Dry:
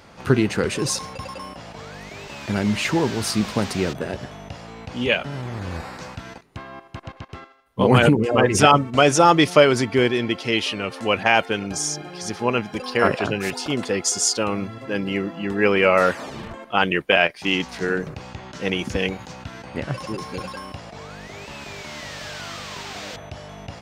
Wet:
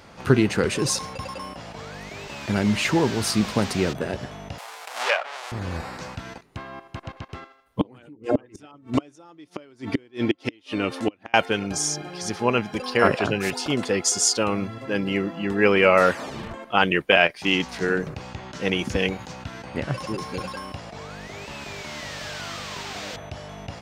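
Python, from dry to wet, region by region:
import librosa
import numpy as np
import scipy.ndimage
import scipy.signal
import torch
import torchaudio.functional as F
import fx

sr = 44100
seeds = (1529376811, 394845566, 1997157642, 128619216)

y = fx.chain(x, sr, fx.halfwave_hold(),
    fx.highpass(hz=670.0, slope=24),
    fx.env_lowpass_down(base_hz=2000.0, full_db=-17.5), at=(4.58, 5.52))
y = fx.chain(y, sr, fx.gate_flip(shuts_db=-10.0, range_db=-36),
    fx.small_body(hz=(300.0, 3600.0), ring_ms=45, db=10), at=(7.8, 11.34))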